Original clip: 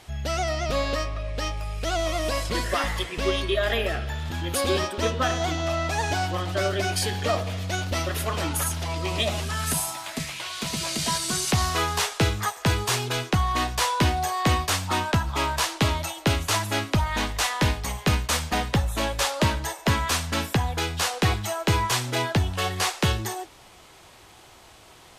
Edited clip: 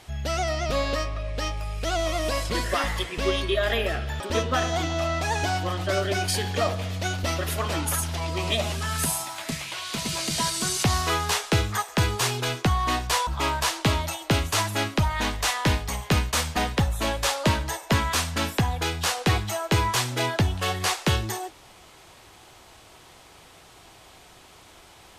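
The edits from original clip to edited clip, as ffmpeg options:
ffmpeg -i in.wav -filter_complex "[0:a]asplit=3[link_01][link_02][link_03];[link_01]atrim=end=4.202[link_04];[link_02]atrim=start=4.878:end=13.952[link_05];[link_03]atrim=start=15.228[link_06];[link_04][link_05]acrossfade=duration=0.004:curve1=hsin:curve2=hsin[link_07];[link_07][link_06]acrossfade=duration=0.004:curve1=hsin:curve2=hsin" out.wav

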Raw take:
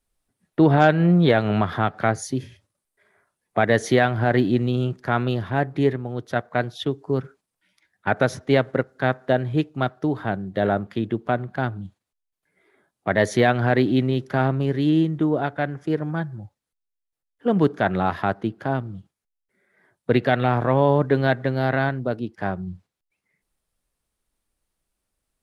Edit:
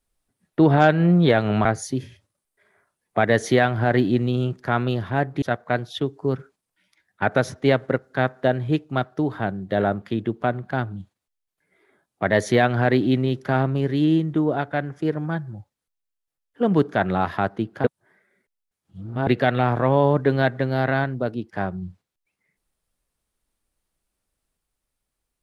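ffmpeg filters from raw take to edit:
ffmpeg -i in.wav -filter_complex "[0:a]asplit=5[link_01][link_02][link_03][link_04][link_05];[link_01]atrim=end=1.652[link_06];[link_02]atrim=start=2.048:end=5.822[link_07];[link_03]atrim=start=6.268:end=18.692[link_08];[link_04]atrim=start=18.688:end=20.122,asetpts=PTS-STARTPTS,areverse[link_09];[link_05]atrim=start=20.118[link_10];[link_06][link_07]acrossfade=duration=0.004:curve1=hsin:curve2=hsin[link_11];[link_11][link_08]acrossfade=duration=0.004:curve1=hsin:curve2=hsin[link_12];[link_12][link_09]acrossfade=duration=0.004:curve1=hsin:curve2=hsin[link_13];[link_13][link_10]acrossfade=duration=0.004:curve1=hsin:curve2=hsin" out.wav

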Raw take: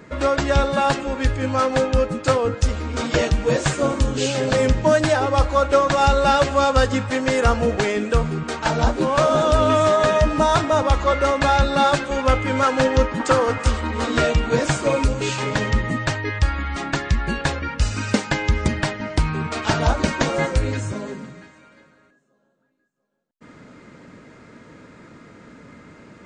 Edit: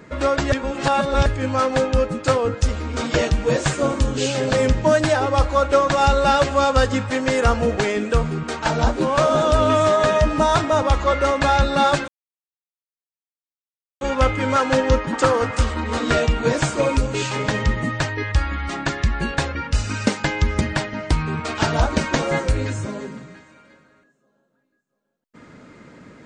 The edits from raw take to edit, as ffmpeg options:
ffmpeg -i in.wav -filter_complex "[0:a]asplit=4[link_01][link_02][link_03][link_04];[link_01]atrim=end=0.522[link_05];[link_02]atrim=start=0.518:end=1.262,asetpts=PTS-STARTPTS,areverse[link_06];[link_03]atrim=start=1.258:end=12.08,asetpts=PTS-STARTPTS,afade=type=out:start_time=10.818:duration=0.004:curve=hsin,apad=pad_dur=1.93[link_07];[link_04]atrim=start=12.08,asetpts=PTS-STARTPTS,afade=type=in:duration=0.004:curve=hsin[link_08];[link_05][link_06]acrossfade=duration=0.004:curve1=hsin:curve2=hsin[link_09];[link_07][link_08]concat=n=2:v=0:a=1[link_10];[link_09][link_10]acrossfade=duration=0.004:curve1=hsin:curve2=hsin" out.wav

